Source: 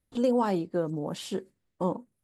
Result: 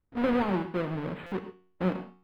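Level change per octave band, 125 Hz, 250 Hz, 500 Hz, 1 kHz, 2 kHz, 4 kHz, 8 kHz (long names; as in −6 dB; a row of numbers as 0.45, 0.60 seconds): +2.0 dB, 0.0 dB, −3.0 dB, −1.5 dB, +8.0 dB, −4.0 dB, below −15 dB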